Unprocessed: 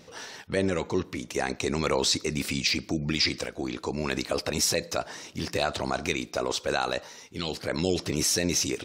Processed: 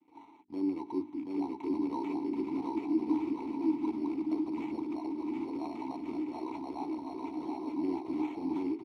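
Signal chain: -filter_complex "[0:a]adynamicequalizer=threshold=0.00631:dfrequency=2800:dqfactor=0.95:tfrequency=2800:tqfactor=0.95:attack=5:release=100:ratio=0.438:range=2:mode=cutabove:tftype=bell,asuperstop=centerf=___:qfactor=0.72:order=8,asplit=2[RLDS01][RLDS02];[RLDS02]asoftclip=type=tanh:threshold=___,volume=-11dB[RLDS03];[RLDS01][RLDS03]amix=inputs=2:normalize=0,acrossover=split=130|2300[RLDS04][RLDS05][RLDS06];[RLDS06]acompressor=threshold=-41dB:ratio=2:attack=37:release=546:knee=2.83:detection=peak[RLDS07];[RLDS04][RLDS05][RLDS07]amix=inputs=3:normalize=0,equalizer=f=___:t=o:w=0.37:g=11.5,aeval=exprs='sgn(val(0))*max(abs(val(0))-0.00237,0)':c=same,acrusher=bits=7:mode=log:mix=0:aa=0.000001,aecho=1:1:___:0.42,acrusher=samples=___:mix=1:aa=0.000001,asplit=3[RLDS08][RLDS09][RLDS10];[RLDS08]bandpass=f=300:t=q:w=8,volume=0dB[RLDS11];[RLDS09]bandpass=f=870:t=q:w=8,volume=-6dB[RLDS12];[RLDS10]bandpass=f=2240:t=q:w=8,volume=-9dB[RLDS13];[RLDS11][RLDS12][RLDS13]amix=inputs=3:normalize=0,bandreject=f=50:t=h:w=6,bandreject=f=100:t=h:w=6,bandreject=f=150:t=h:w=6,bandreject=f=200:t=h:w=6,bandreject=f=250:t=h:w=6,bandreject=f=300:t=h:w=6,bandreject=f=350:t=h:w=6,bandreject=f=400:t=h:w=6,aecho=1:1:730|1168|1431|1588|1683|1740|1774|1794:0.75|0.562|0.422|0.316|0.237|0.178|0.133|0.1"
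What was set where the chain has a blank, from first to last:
1800, -20.5dB, 1100, 3.1, 9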